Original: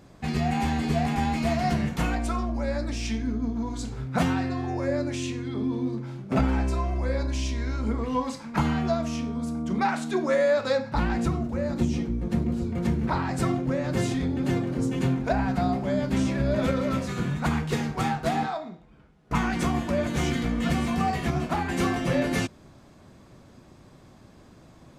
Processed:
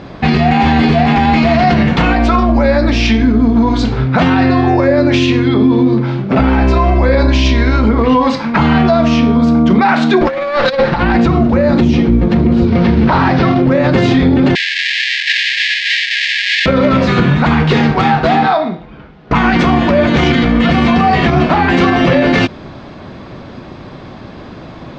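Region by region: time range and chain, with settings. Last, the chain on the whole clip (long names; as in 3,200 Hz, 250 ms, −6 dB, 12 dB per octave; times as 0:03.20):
0:10.21–0:11.03: lower of the sound and its delayed copy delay 5.7 ms + compressor whose output falls as the input rises −30 dBFS, ratio −0.5
0:12.67–0:13.62: variable-slope delta modulation 32 kbit/s + high-frequency loss of the air 59 metres + mains-hum notches 50/100/150/200/250/300/350 Hz
0:14.55–0:16.66: each half-wave held at its own peak + linear-phase brick-wall band-pass 1,600–8,600 Hz + notch filter 5,800 Hz, Q 25
whole clip: low-pass filter 4,300 Hz 24 dB per octave; low-shelf EQ 160 Hz −5.5 dB; boost into a limiter +24 dB; level −1.5 dB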